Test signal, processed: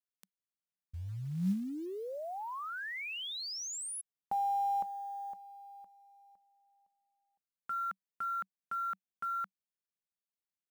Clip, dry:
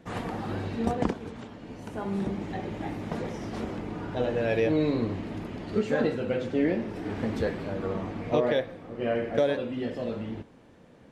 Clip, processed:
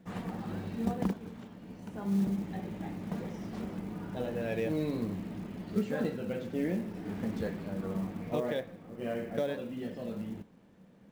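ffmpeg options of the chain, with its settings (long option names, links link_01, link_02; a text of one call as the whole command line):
ffmpeg -i in.wav -af "equalizer=frequency=190:width_type=o:width=0.36:gain=12.5,acrusher=bits=7:mode=log:mix=0:aa=0.000001,volume=-8.5dB" out.wav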